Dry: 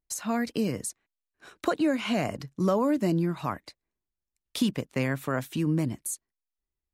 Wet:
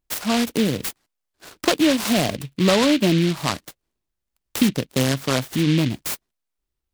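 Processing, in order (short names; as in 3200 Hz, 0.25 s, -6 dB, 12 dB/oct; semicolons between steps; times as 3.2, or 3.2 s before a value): noise-modulated delay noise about 2800 Hz, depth 0.13 ms; gain +7.5 dB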